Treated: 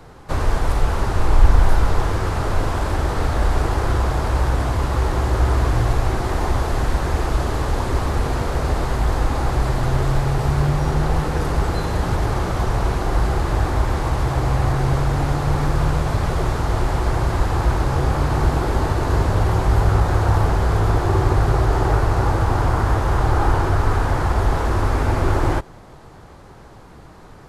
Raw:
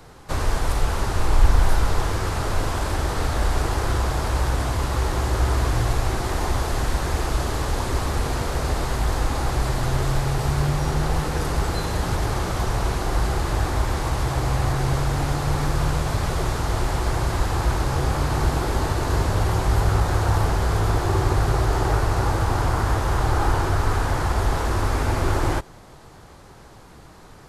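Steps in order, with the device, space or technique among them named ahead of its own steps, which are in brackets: behind a face mask (treble shelf 2.8 kHz -8 dB); trim +3.5 dB

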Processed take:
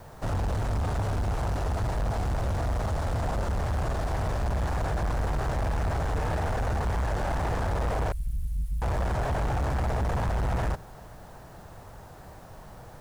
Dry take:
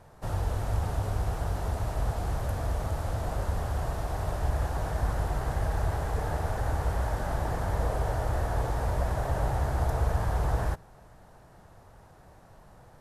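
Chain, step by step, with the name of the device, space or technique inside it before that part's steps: 8.12–8.82 s: inverse Chebyshev band-stop 180–3700 Hz, stop band 60 dB; compact cassette (saturation -31.5 dBFS, distortion -8 dB; low-pass 8.3 kHz 12 dB/octave; wow and flutter; white noise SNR 35 dB); trim +7.5 dB

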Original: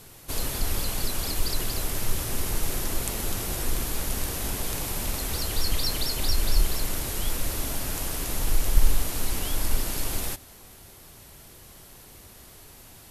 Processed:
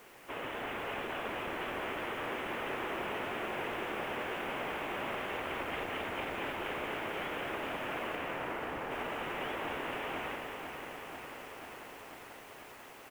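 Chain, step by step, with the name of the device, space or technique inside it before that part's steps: army field radio (band-pass 390–3000 Hz; CVSD coder 16 kbps; white noise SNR 22 dB); 8.15–8.90 s: low-pass 3.4 kHz -> 1.4 kHz 24 dB/octave; delay 207 ms -7 dB; bit-crushed delay 492 ms, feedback 80%, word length 10-bit, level -7 dB

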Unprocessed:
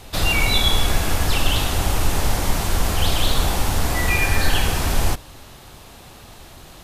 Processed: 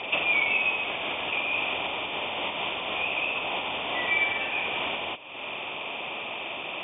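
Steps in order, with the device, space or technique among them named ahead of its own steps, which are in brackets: hearing aid with frequency lowering (knee-point frequency compression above 2.3 kHz 4:1; compression 4:1, threshold -33 dBFS, peak gain reduction 18.5 dB; cabinet simulation 350–5000 Hz, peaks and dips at 620 Hz +4 dB, 1 kHz +4 dB, 1.6 kHz -9 dB, 2.3 kHz +7 dB, 3.8 kHz -10 dB); trim +8 dB

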